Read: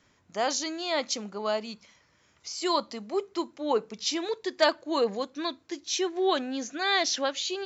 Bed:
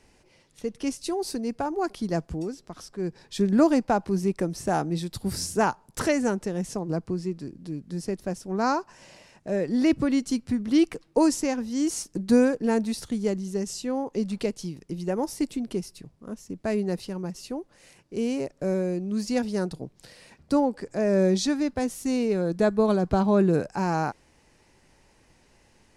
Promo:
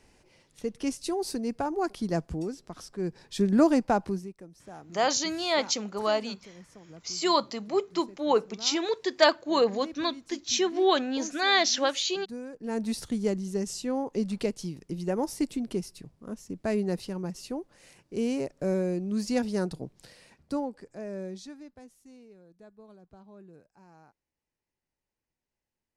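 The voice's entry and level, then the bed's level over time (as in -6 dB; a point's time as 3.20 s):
4.60 s, +2.5 dB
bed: 4.08 s -1.5 dB
4.34 s -20.5 dB
12.43 s -20.5 dB
12.89 s -1.5 dB
19.94 s -1.5 dB
22.49 s -30.5 dB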